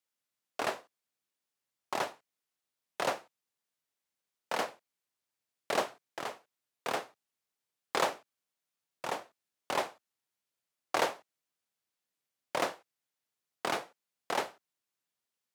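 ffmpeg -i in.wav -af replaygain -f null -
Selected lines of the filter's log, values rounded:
track_gain = +16.2 dB
track_peak = 0.151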